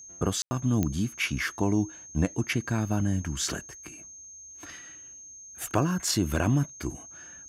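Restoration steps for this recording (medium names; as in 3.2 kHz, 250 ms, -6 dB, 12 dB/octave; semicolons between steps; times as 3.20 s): de-click; band-stop 6.4 kHz, Q 30; room tone fill 0.42–0.51 s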